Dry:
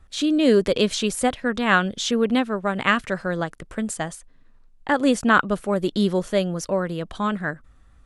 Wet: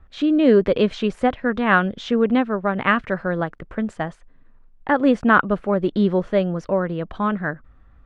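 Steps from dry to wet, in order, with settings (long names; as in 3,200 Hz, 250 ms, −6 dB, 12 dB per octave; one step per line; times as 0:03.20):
low-pass filter 2,100 Hz 12 dB per octave
level +2.5 dB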